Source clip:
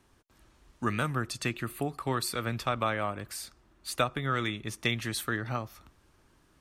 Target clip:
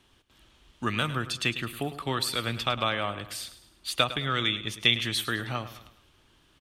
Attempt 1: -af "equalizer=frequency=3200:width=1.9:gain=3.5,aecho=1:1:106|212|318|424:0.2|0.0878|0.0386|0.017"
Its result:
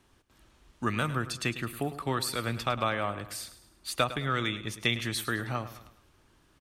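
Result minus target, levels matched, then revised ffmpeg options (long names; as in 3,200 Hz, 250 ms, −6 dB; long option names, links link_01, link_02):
4,000 Hz band −4.5 dB
-af "equalizer=frequency=3200:width=1.9:gain=13,aecho=1:1:106|212|318|424:0.2|0.0878|0.0386|0.017"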